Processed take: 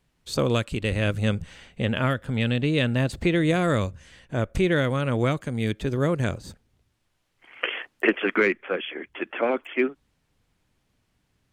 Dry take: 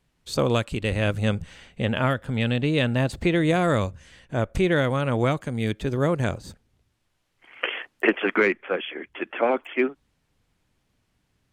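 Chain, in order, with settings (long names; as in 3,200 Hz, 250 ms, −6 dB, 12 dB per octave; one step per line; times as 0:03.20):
dynamic equaliser 820 Hz, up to −5 dB, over −37 dBFS, Q 1.7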